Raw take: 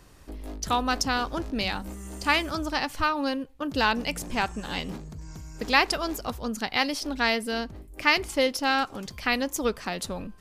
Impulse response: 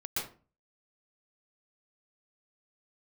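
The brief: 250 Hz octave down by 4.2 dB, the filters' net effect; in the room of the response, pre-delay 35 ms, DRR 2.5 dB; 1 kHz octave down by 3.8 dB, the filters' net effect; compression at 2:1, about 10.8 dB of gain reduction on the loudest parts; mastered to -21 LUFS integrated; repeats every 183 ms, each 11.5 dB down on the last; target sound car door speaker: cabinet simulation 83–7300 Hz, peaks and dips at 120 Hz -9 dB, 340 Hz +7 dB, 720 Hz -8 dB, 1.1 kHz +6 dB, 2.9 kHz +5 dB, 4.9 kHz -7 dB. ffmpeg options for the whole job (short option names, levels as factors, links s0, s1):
-filter_complex "[0:a]equalizer=f=250:t=o:g=-7.5,equalizer=f=1000:t=o:g=-5.5,acompressor=threshold=0.0141:ratio=2,aecho=1:1:183|366|549:0.266|0.0718|0.0194,asplit=2[s0][s1];[1:a]atrim=start_sample=2205,adelay=35[s2];[s1][s2]afir=irnorm=-1:irlink=0,volume=0.473[s3];[s0][s3]amix=inputs=2:normalize=0,highpass=83,equalizer=f=120:t=q:w=4:g=-9,equalizer=f=340:t=q:w=4:g=7,equalizer=f=720:t=q:w=4:g=-8,equalizer=f=1100:t=q:w=4:g=6,equalizer=f=2900:t=q:w=4:g=5,equalizer=f=4900:t=q:w=4:g=-7,lowpass=f=7300:w=0.5412,lowpass=f=7300:w=1.3066,volume=4.47"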